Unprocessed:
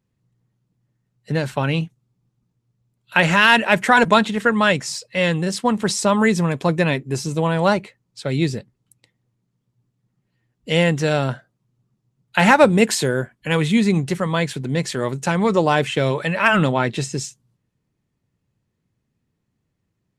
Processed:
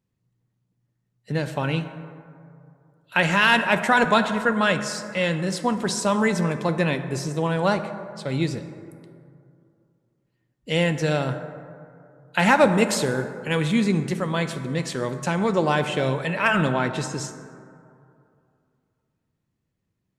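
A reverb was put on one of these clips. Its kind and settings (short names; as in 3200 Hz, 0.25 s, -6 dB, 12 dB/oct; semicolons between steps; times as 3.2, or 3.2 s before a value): plate-style reverb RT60 2.5 s, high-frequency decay 0.35×, DRR 8.5 dB; gain -4.5 dB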